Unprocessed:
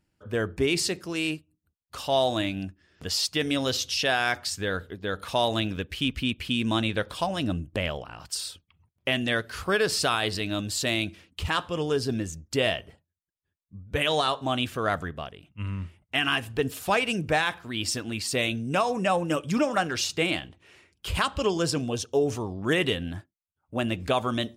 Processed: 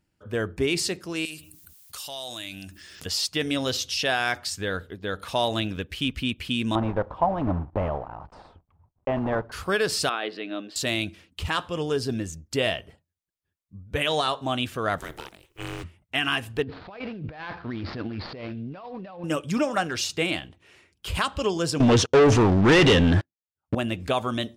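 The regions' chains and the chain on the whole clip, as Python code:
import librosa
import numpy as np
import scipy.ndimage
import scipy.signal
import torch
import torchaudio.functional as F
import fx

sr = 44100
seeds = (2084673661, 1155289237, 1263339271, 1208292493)

y = fx.chain(x, sr, fx.pre_emphasis(coefficient=0.9),
    fx.env_flatten(amount_pct=70), at=(1.25, 3.06))
y = fx.chain(y, sr, fx.block_float(bits=3),
    fx.lowpass_res(hz=900.0, q=2.4),
    fx.low_shelf(hz=61.0, db=11.5), at=(6.75, 9.52))
y = fx.chain(y, sr, fx.highpass(hz=260.0, slope=24),
    fx.air_absorb(metres=330.0),
    fx.notch(hz=960.0, q=7.6), at=(10.09, 10.76))
y = fx.spec_flatten(y, sr, power=0.57, at=(14.98, 15.82), fade=0.02)
y = fx.highpass(y, sr, hz=77.0, slope=24, at=(14.98, 15.82), fade=0.02)
y = fx.ring_mod(y, sr, carrier_hz=220.0, at=(14.98, 15.82), fade=0.02)
y = fx.chain(y, sr, fx.median_filter(points=15),
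    fx.steep_lowpass(hz=4600.0, slope=48),
    fx.over_compress(threshold_db=-36.0, ratio=-1.0), at=(16.62, 19.24))
y = fx.chain(y, sr, fx.leveller(passes=5),
    fx.air_absorb(metres=95.0), at=(21.8, 23.75))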